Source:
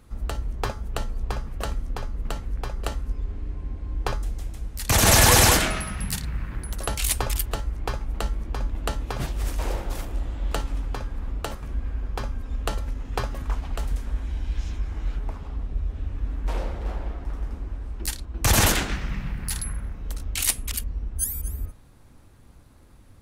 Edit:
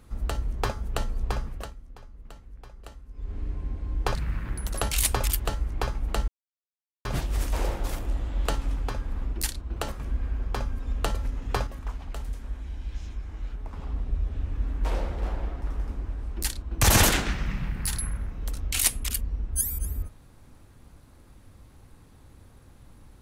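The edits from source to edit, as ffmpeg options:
-filter_complex "[0:a]asplit=10[s0][s1][s2][s3][s4][s5][s6][s7][s8][s9];[s0]atrim=end=1.72,asetpts=PTS-STARTPTS,afade=t=out:st=1.44:d=0.28:silence=0.158489[s10];[s1]atrim=start=1.72:end=3.12,asetpts=PTS-STARTPTS,volume=0.158[s11];[s2]atrim=start=3.12:end=4.152,asetpts=PTS-STARTPTS,afade=t=in:d=0.28:silence=0.158489[s12];[s3]atrim=start=6.208:end=8.34,asetpts=PTS-STARTPTS,afade=t=out:st=2.128:d=0.004:c=hsin[s13];[s4]atrim=start=8.34:end=9.11,asetpts=PTS-STARTPTS,volume=0[s14];[s5]atrim=start=9.11:end=11.392,asetpts=PTS-STARTPTS,afade=t=in:d=0.004:c=hsin[s15];[s6]atrim=start=17.968:end=18.402[s16];[s7]atrim=start=11.388:end=13.302[s17];[s8]atrim=start=13.298:end=15.362,asetpts=PTS-STARTPTS,volume=0.473[s18];[s9]atrim=start=15.358[s19];[s10][s11][s12]concat=n=3:v=0:a=1[s20];[s13][s14][s15]concat=n=3:v=0:a=1[s21];[s20][s21]acrossfade=d=0.004:c1=hsin:c2=hsin[s22];[s22][s16]acrossfade=d=0.004:c1=hsin:c2=hsin[s23];[s23][s17]acrossfade=d=0.004:c1=hsin:c2=hsin[s24];[s24][s18]acrossfade=d=0.004:c1=hsin:c2=hsin[s25];[s25][s19]acrossfade=d=0.004:c1=hsin:c2=hsin"

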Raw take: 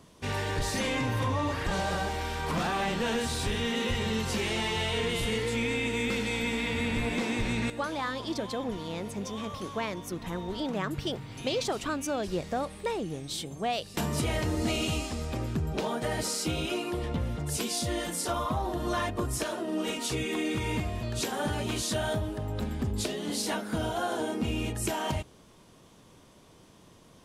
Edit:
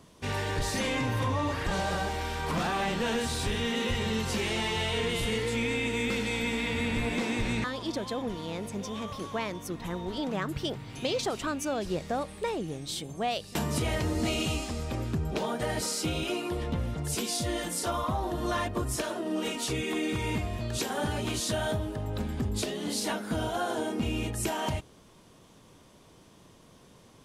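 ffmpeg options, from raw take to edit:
-filter_complex "[0:a]asplit=2[s0][s1];[s0]atrim=end=7.642[s2];[s1]atrim=start=8.058[s3];[s2][s3]acrossfade=d=0.004:c1=hsin:c2=hsin"

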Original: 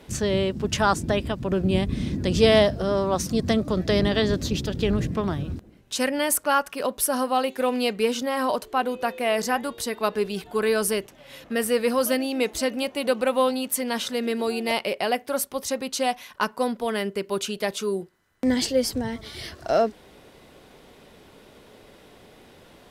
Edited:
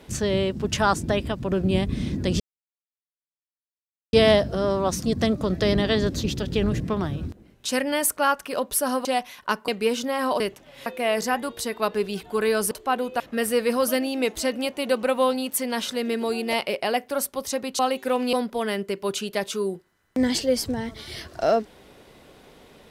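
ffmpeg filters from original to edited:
-filter_complex "[0:a]asplit=10[s0][s1][s2][s3][s4][s5][s6][s7][s8][s9];[s0]atrim=end=2.4,asetpts=PTS-STARTPTS,afade=t=out:st=2.396:d=0.004:c=hsin,apad=pad_dur=1.73[s10];[s1]atrim=start=2.4:end=7.322,asetpts=PTS-STARTPTS,afade=t=in:d=0.004:c=hsin[s11];[s2]atrim=start=15.968:end=16.602[s12];[s3]atrim=start=7.858:end=8.582[s13];[s4]atrim=start=10.918:end=11.382[s14];[s5]atrim=start=9.068:end=10.922[s15];[s6]atrim=start=8.578:end=9.072[s16];[s7]atrim=start=11.378:end=15.972[s17];[s8]atrim=start=7.318:end=7.862[s18];[s9]atrim=start=16.598[s19];[s10][s11]concat=n=2:v=0:a=1[s20];[s20][s12]acrossfade=d=0.004:c1=hsin:c2=hsin[s21];[s21][s13]acrossfade=d=0.004:c1=hsin:c2=hsin[s22];[s22][s14]acrossfade=d=0.004:c1=hsin:c2=hsin[s23];[s23][s15]acrossfade=d=0.004:c1=hsin:c2=hsin[s24];[s24][s16]acrossfade=d=0.004:c1=hsin:c2=hsin[s25];[s25][s17]acrossfade=d=0.004:c1=hsin:c2=hsin[s26];[s26][s18]acrossfade=d=0.004:c1=hsin:c2=hsin[s27];[s27][s19]acrossfade=d=0.004:c1=hsin:c2=hsin"

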